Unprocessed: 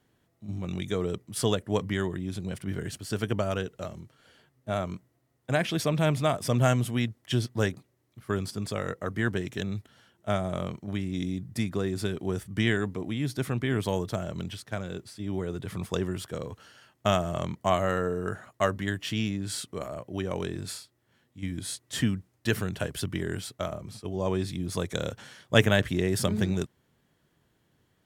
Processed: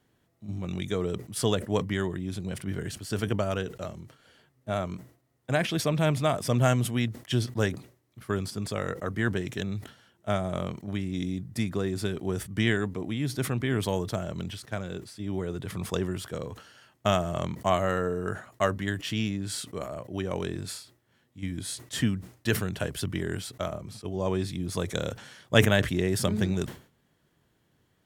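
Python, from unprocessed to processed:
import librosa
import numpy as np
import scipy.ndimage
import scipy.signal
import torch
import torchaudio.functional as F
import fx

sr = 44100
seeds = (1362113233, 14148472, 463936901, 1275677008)

y = fx.sustainer(x, sr, db_per_s=140.0)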